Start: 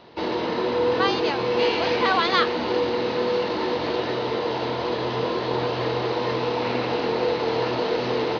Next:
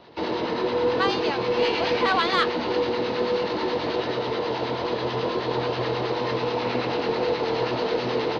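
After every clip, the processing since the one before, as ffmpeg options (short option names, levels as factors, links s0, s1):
-filter_complex "[0:a]aeval=exprs='0.447*(cos(1*acos(clip(val(0)/0.447,-1,1)))-cos(1*PI/2))+0.00282*(cos(6*acos(clip(val(0)/0.447,-1,1)))-cos(6*PI/2))':c=same,acrossover=split=940[s0][s1];[s0]aeval=exprs='val(0)*(1-0.5/2+0.5/2*cos(2*PI*9.3*n/s))':c=same[s2];[s1]aeval=exprs='val(0)*(1-0.5/2-0.5/2*cos(2*PI*9.3*n/s))':c=same[s3];[s2][s3]amix=inputs=2:normalize=0,acontrast=80,volume=0.531"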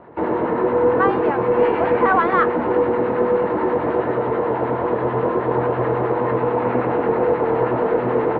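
-af "lowpass=f=1700:w=0.5412,lowpass=f=1700:w=1.3066,volume=2.11"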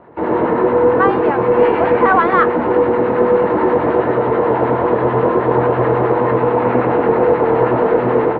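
-af "dynaudnorm=f=180:g=3:m=2.24"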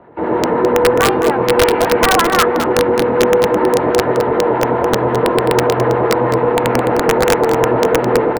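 -filter_complex "[0:a]bandreject=f=1100:w=18,acrossover=split=100[s0][s1];[s1]aeval=exprs='(mod(1.58*val(0)+1,2)-1)/1.58':c=same[s2];[s0][s2]amix=inputs=2:normalize=0,aecho=1:1:212:0.335"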